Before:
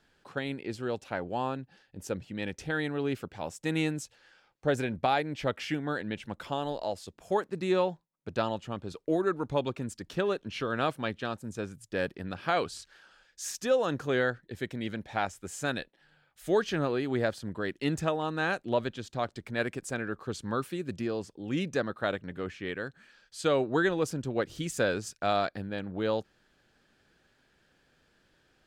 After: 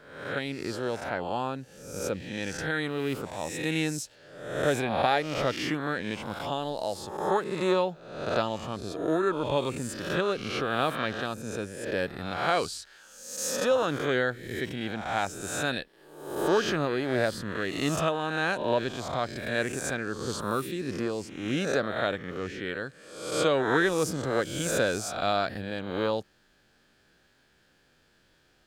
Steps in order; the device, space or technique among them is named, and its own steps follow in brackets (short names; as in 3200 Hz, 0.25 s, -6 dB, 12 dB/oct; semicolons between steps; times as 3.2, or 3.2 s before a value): spectral swells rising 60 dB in 0.83 s; presence and air boost (bell 4400 Hz +2 dB; high shelf 10000 Hz +7 dB)